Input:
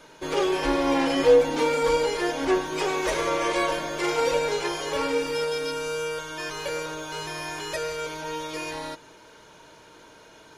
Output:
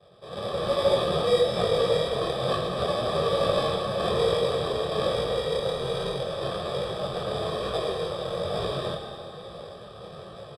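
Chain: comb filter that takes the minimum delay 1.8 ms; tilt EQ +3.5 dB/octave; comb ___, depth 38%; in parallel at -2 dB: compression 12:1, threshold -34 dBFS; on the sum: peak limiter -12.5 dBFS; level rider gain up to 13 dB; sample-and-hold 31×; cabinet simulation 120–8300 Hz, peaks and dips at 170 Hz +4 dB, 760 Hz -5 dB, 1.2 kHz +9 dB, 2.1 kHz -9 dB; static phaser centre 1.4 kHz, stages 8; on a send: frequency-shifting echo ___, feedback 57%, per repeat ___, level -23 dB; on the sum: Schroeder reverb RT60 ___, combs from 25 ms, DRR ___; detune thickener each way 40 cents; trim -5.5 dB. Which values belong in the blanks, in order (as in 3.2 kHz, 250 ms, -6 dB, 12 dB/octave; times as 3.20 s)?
1.8 ms, 85 ms, -140 Hz, 2.3 s, 4.5 dB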